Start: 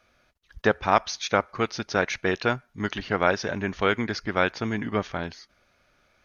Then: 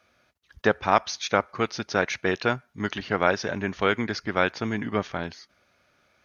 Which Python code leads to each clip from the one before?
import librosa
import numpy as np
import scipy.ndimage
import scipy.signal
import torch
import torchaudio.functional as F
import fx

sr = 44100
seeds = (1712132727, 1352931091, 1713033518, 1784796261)

y = scipy.signal.sosfilt(scipy.signal.butter(2, 77.0, 'highpass', fs=sr, output='sos'), x)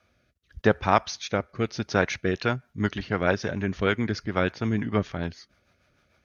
y = fx.low_shelf(x, sr, hz=150.0, db=11.5)
y = fx.rotary_switch(y, sr, hz=0.85, then_hz=6.7, switch_at_s=1.97)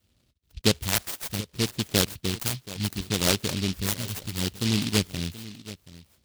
y = fx.phaser_stages(x, sr, stages=2, low_hz=320.0, high_hz=4200.0, hz=0.67, feedback_pct=30)
y = y + 10.0 ** (-16.5 / 20.0) * np.pad(y, (int(728 * sr / 1000.0), 0))[:len(y)]
y = fx.noise_mod_delay(y, sr, seeds[0], noise_hz=3500.0, depth_ms=0.34)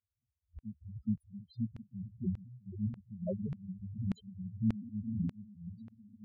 y = fx.echo_alternate(x, sr, ms=423, hz=2400.0, feedback_pct=51, wet_db=-5.0)
y = fx.spec_topn(y, sr, count=2)
y = fx.filter_lfo_bandpass(y, sr, shape='saw_down', hz=1.7, low_hz=200.0, high_hz=2500.0, q=0.94)
y = F.gain(torch.from_numpy(y), 4.5).numpy()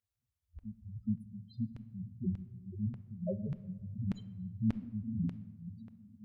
y = fx.room_shoebox(x, sr, seeds[1], volume_m3=690.0, walls='mixed', distance_m=0.3)